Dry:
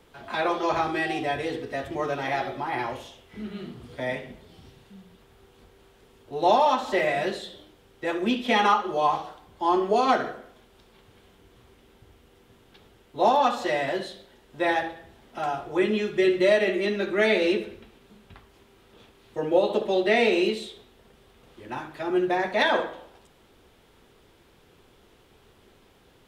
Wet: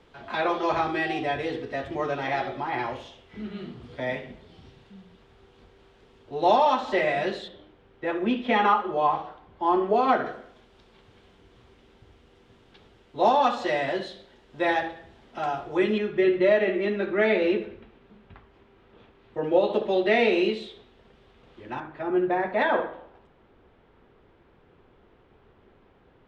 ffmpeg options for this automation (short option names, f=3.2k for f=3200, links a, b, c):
-af "asetnsamples=n=441:p=0,asendcmd='7.48 lowpass f 2500;10.26 lowpass f 5500;15.98 lowpass f 2400;19.44 lowpass f 3800;21.8 lowpass f 1900',lowpass=4.8k"